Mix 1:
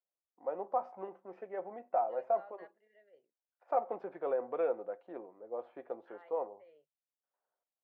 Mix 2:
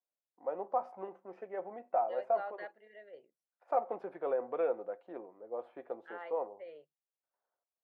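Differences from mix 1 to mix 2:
second voice +11.5 dB; master: remove air absorption 70 m

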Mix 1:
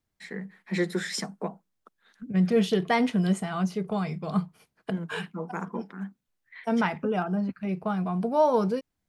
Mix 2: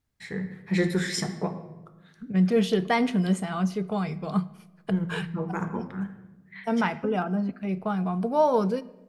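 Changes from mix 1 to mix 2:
first voice: remove steep high-pass 180 Hz 48 dB/oct; reverb: on, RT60 1.0 s

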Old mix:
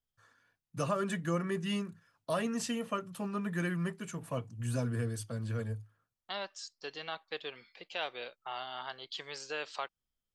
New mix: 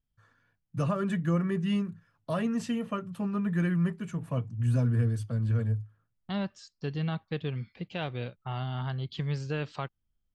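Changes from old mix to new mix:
second voice: remove HPF 520 Hz 12 dB/oct; master: add tone controls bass +10 dB, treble -8 dB

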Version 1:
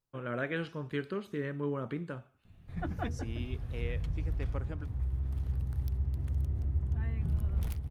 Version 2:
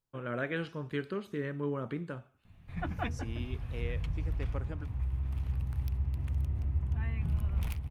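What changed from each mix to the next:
background: add fifteen-band EQ 400 Hz -4 dB, 1000 Hz +5 dB, 2500 Hz +9 dB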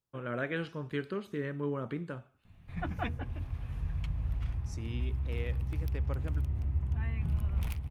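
second voice: entry +1.55 s

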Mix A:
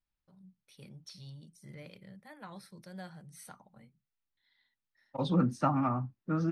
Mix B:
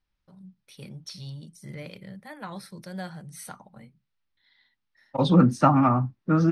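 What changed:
first voice +9.5 dB; second voice +10.0 dB

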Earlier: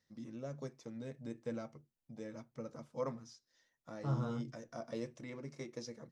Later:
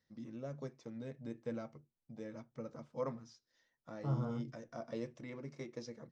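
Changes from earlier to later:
second voice: add LPF 1300 Hz; master: add air absorption 82 m

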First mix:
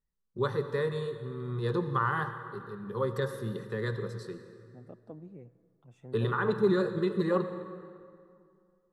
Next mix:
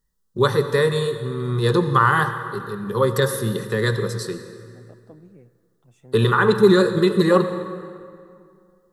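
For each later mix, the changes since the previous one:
first voice +11.5 dB; master: remove LPF 2200 Hz 6 dB/oct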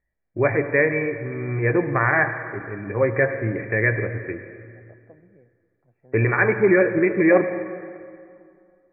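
first voice: remove fixed phaser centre 450 Hz, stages 8; master: add rippled Chebyshev low-pass 2400 Hz, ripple 9 dB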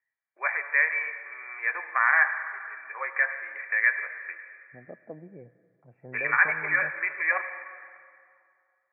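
first voice: add HPF 1000 Hz 24 dB/oct; second voice +8.0 dB

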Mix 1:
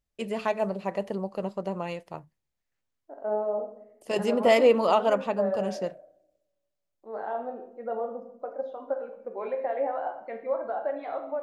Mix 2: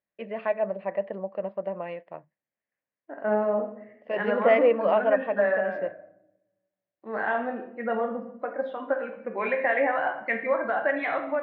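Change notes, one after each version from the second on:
second voice: remove band-pass 590 Hz, Q 3.3; master: add speaker cabinet 250–2300 Hz, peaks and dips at 260 Hz -5 dB, 400 Hz -6 dB, 590 Hz +5 dB, 870 Hz -5 dB, 1300 Hz -6 dB, 1800 Hz +4 dB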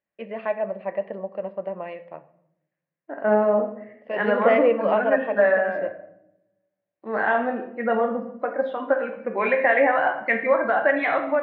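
first voice: send on; second voice +5.5 dB

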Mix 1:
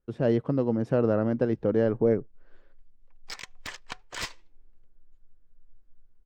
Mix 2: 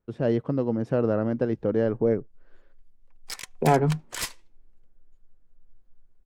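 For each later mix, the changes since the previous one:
second voice: unmuted; background: remove running mean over 4 samples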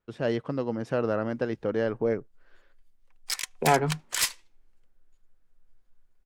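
master: add tilt shelf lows -6.5 dB, about 810 Hz

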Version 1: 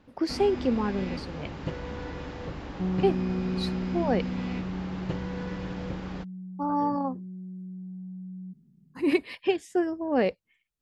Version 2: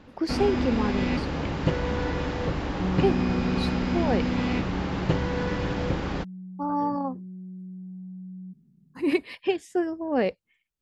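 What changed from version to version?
first sound +9.0 dB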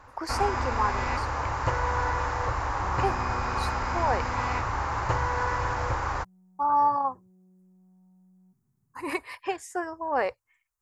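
master: add EQ curve 120 Hz 0 dB, 170 Hz -21 dB, 690 Hz +1 dB, 1000 Hz +11 dB, 2200 Hz 0 dB, 3300 Hz -9 dB, 6800 Hz +7 dB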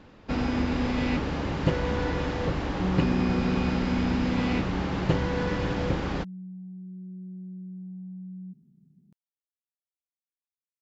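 speech: muted; master: remove EQ curve 120 Hz 0 dB, 170 Hz -21 dB, 690 Hz +1 dB, 1000 Hz +11 dB, 2200 Hz 0 dB, 3300 Hz -9 dB, 6800 Hz +7 dB

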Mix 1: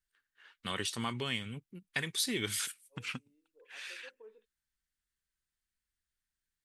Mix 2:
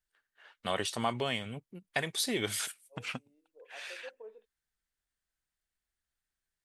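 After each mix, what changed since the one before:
master: add bell 660 Hz +15 dB 0.83 oct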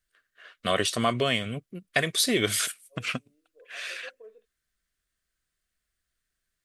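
first voice +8.0 dB; master: add Butterworth band-stop 870 Hz, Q 3.3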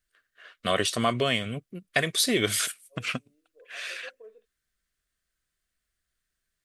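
none

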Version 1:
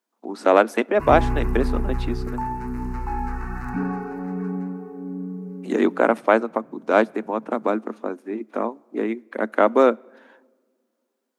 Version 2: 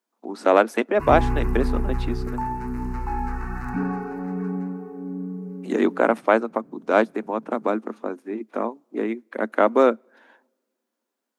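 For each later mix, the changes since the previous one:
speech: send -11.0 dB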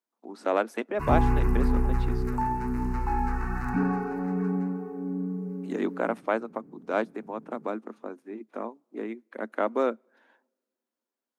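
speech -9.0 dB

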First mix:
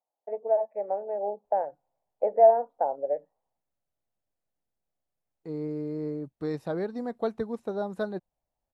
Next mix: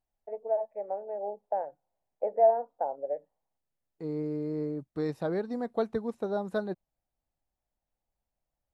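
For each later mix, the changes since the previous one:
first voice -4.5 dB; second voice: entry -1.45 s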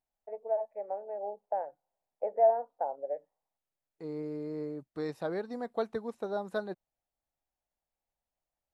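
master: add low shelf 350 Hz -9 dB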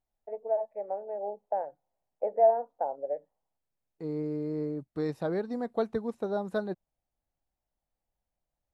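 master: add low shelf 350 Hz +9 dB

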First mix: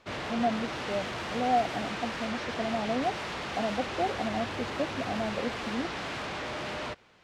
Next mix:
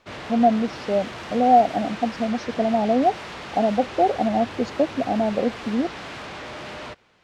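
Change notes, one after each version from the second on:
speech +11.0 dB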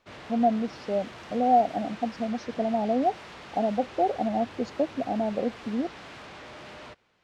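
speech -5.5 dB; background -8.5 dB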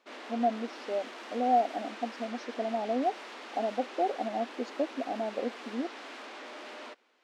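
speech -4.5 dB; master: add brick-wall FIR high-pass 220 Hz

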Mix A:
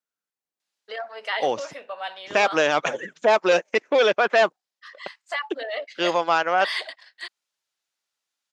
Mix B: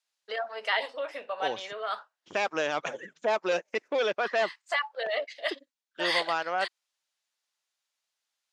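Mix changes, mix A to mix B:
first voice: entry -0.60 s; second voice -9.0 dB

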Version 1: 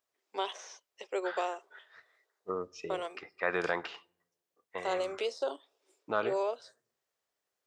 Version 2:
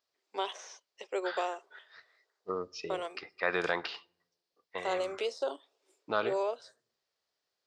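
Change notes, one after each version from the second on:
second voice: add synth low-pass 4700 Hz, resonance Q 3.7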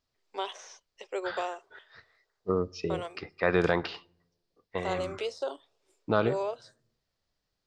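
second voice: remove HPF 980 Hz 6 dB/oct

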